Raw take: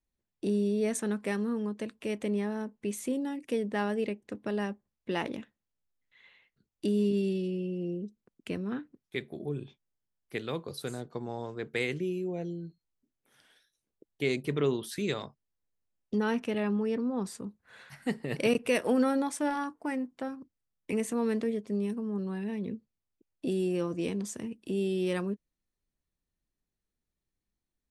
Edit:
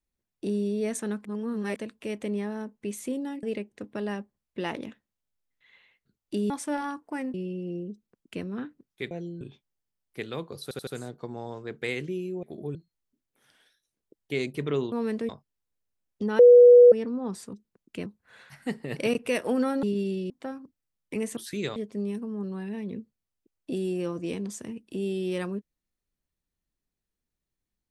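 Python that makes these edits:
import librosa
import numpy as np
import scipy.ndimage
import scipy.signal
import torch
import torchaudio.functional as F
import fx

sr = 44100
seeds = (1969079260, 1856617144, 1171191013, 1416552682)

y = fx.edit(x, sr, fx.reverse_span(start_s=1.25, length_s=0.51),
    fx.cut(start_s=3.43, length_s=0.51),
    fx.swap(start_s=7.01, length_s=0.47, other_s=19.23, other_length_s=0.84),
    fx.duplicate(start_s=8.06, length_s=0.52, to_s=17.46),
    fx.swap(start_s=9.25, length_s=0.32, other_s=12.35, other_length_s=0.3),
    fx.stutter(start_s=10.79, slice_s=0.08, count=4),
    fx.swap(start_s=14.82, length_s=0.39, other_s=21.14, other_length_s=0.37),
    fx.bleep(start_s=16.31, length_s=0.53, hz=487.0, db=-9.0), tone=tone)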